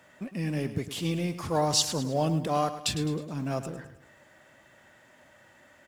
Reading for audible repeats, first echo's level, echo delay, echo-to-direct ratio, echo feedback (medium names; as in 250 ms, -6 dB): 4, -12.0 dB, 105 ms, -11.0 dB, 45%